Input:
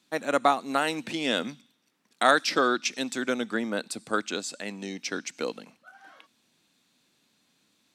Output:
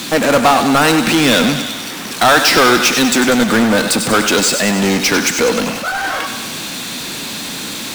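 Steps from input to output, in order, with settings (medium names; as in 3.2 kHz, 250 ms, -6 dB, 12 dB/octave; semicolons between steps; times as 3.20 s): power-law waveshaper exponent 0.35; thinning echo 98 ms, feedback 68%, high-pass 400 Hz, level -8.5 dB; trim +3 dB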